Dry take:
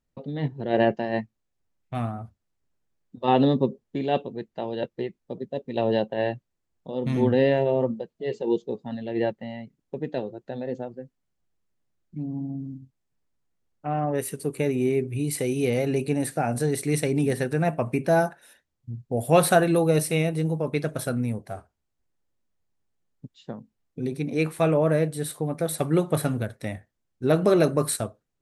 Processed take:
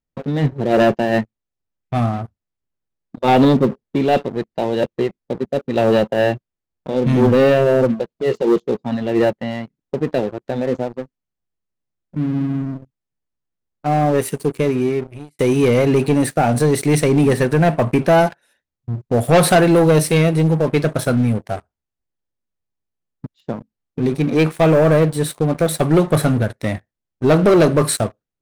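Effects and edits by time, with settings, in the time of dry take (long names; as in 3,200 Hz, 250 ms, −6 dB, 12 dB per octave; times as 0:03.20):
0:14.31–0:15.39: fade out linear
whole clip: high-shelf EQ 9,800 Hz −10.5 dB; leveller curve on the samples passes 3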